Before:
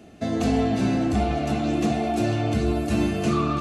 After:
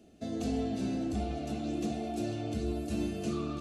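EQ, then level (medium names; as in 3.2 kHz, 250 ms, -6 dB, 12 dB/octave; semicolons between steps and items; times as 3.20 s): graphic EQ 125/1000/2000 Hz -6/-9/-7 dB; -8.5 dB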